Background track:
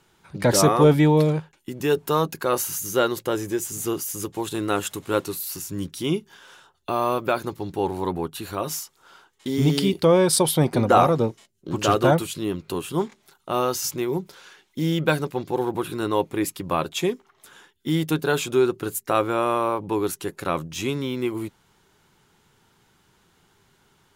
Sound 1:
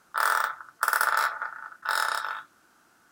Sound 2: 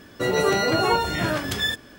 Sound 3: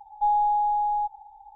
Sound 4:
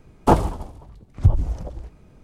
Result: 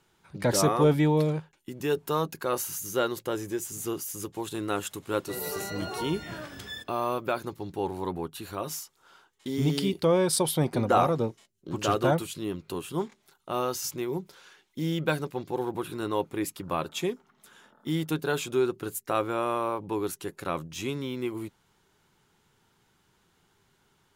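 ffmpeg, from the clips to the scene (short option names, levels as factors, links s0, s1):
-filter_complex "[0:a]volume=0.501[s0];[1:a]lowpass=f=210:t=q:w=4.9[s1];[2:a]atrim=end=1.98,asetpts=PTS-STARTPTS,volume=0.178,afade=t=in:d=0.004:c=hsin,afade=t=out:st=1.976:d=0.004:c=hsin,adelay=5080[s2];[s1]atrim=end=3.11,asetpts=PTS-STARTPTS,volume=0.447,afade=t=in:d=0.004:c=hsin,afade=t=out:st=3.106:d=0.004:c=hsin,adelay=15750[s3];[s0][s2][s3]amix=inputs=3:normalize=0"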